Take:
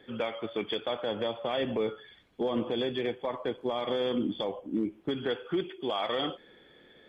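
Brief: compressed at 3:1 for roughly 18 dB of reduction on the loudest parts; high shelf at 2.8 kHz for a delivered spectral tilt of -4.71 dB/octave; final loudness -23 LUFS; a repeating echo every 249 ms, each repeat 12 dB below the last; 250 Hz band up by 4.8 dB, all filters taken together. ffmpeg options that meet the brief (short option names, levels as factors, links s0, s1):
-af "equalizer=f=250:t=o:g=6,highshelf=f=2800:g=-8.5,acompressor=threshold=0.00447:ratio=3,aecho=1:1:249|498|747:0.251|0.0628|0.0157,volume=14.1"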